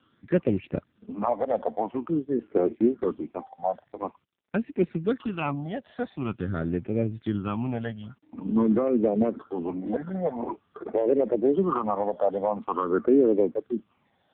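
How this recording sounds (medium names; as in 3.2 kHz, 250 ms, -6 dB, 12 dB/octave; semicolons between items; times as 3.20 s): phasing stages 8, 0.47 Hz, lowest notch 330–1100 Hz; a quantiser's noise floor 12-bit, dither none; AMR-NB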